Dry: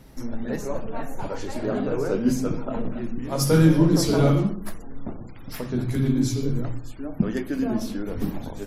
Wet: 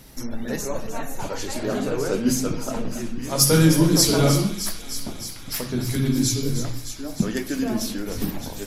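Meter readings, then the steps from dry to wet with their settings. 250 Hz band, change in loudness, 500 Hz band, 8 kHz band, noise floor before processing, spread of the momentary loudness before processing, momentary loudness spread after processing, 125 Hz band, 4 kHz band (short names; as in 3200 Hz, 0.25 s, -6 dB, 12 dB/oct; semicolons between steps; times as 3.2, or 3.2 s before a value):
0.0 dB, +1.5 dB, +0.5 dB, +11.5 dB, -38 dBFS, 17 LU, 15 LU, 0.0 dB, +10.0 dB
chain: high shelf 2500 Hz +12 dB; on a send: thin delay 0.308 s, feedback 77%, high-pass 2400 Hz, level -10 dB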